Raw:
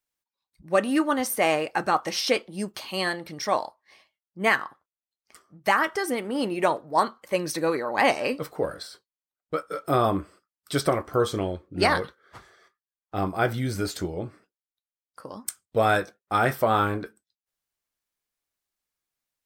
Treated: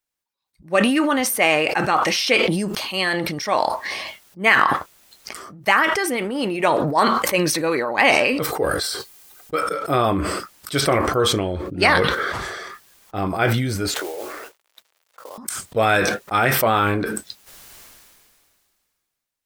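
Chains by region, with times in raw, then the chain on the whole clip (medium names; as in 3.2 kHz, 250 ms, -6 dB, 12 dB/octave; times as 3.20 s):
8.42–9.61 s: treble shelf 6.7 kHz +7.5 dB + comb 2.5 ms, depth 33%
13.94–15.38 s: median filter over 9 samples + high-pass 430 Hz 24 dB/octave + modulation noise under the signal 12 dB
whole clip: dynamic bell 2.5 kHz, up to +8 dB, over -42 dBFS, Q 1.5; decay stretcher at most 27 dB/s; trim +2 dB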